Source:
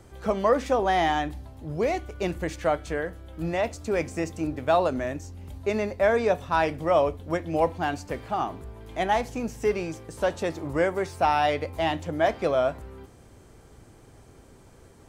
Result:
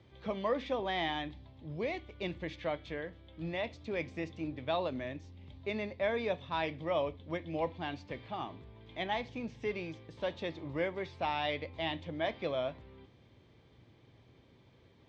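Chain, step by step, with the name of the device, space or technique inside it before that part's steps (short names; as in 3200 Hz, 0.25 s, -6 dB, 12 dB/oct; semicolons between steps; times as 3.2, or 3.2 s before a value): guitar cabinet (speaker cabinet 81–4500 Hz, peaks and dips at 120 Hz +4 dB, 420 Hz -3 dB, 740 Hz -5 dB, 1400 Hz -8 dB, 2200 Hz +5 dB, 3500 Hz +9 dB); gain -9 dB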